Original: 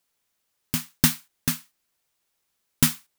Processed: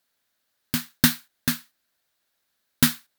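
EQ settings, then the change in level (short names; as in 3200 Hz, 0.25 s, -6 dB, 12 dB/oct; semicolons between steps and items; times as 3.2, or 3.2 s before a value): fifteen-band EQ 100 Hz +4 dB, 250 Hz +7 dB, 630 Hz +7 dB, 1600 Hz +10 dB, 4000 Hz +8 dB, 16000 Hz +6 dB; -4.0 dB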